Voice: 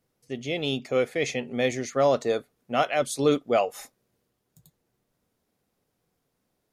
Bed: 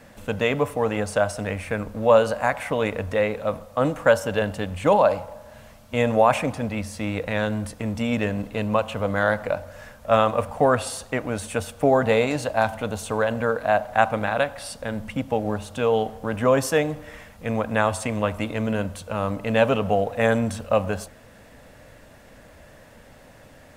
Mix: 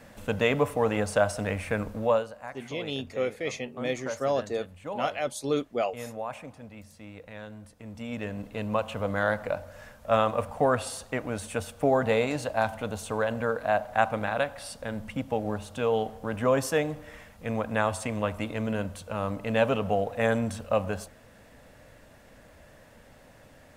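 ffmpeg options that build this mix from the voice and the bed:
ffmpeg -i stem1.wav -i stem2.wav -filter_complex "[0:a]adelay=2250,volume=-5.5dB[link_01];[1:a]volume=11dB,afade=type=out:start_time=1.9:duration=0.38:silence=0.158489,afade=type=in:start_time=7.75:duration=1.15:silence=0.223872[link_02];[link_01][link_02]amix=inputs=2:normalize=0" out.wav

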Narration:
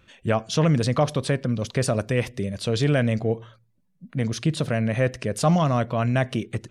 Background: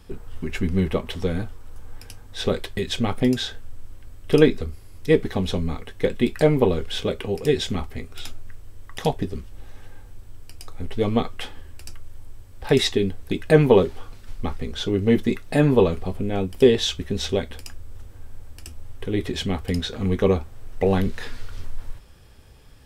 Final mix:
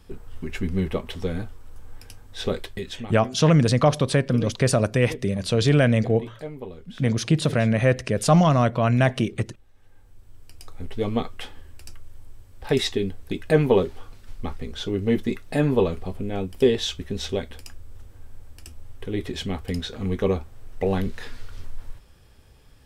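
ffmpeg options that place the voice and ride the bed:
ffmpeg -i stem1.wav -i stem2.wav -filter_complex "[0:a]adelay=2850,volume=3dB[link_01];[1:a]volume=11.5dB,afade=type=out:start_time=2.62:duration=0.53:silence=0.177828,afade=type=in:start_time=9.74:duration=0.94:silence=0.188365[link_02];[link_01][link_02]amix=inputs=2:normalize=0" out.wav

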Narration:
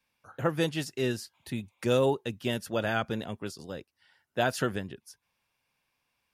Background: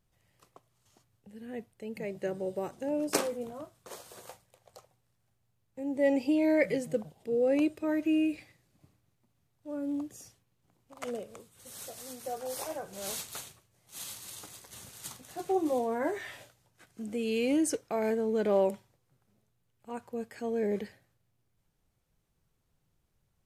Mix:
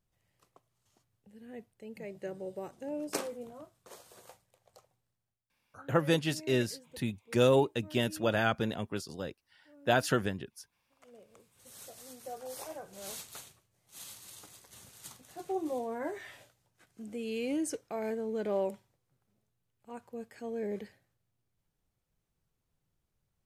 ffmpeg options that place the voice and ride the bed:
ffmpeg -i stem1.wav -i stem2.wav -filter_complex "[0:a]adelay=5500,volume=0.5dB[link_01];[1:a]volume=10dB,afade=type=out:start_time=4.97:duration=0.47:silence=0.16788,afade=type=in:start_time=11.11:duration=0.55:silence=0.158489[link_02];[link_01][link_02]amix=inputs=2:normalize=0" out.wav

